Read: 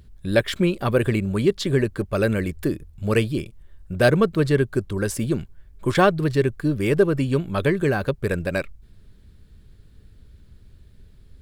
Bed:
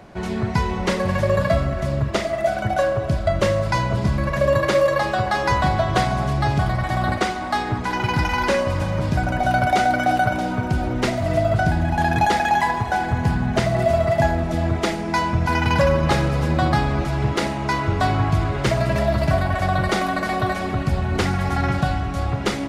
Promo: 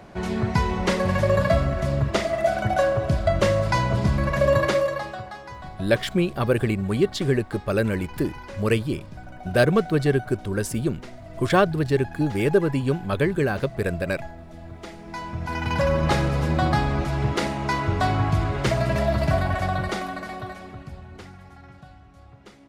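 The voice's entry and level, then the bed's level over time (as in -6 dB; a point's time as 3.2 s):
5.55 s, -1.5 dB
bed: 4.63 s -1 dB
5.48 s -20 dB
14.64 s -20 dB
16.02 s -2.5 dB
19.52 s -2.5 dB
21.61 s -25.5 dB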